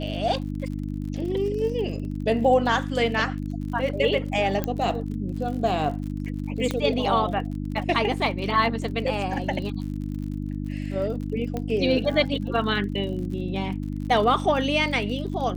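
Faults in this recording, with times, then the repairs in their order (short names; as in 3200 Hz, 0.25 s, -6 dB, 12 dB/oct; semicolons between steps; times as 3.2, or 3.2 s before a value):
crackle 54/s -34 dBFS
hum 50 Hz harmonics 6 -30 dBFS
4.64 pop -12 dBFS
6.71 pop -13 dBFS
11.57 pop -17 dBFS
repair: de-click; de-hum 50 Hz, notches 6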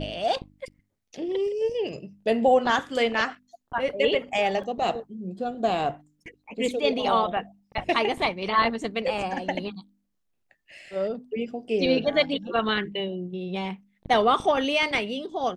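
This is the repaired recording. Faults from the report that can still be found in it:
4.64 pop
6.71 pop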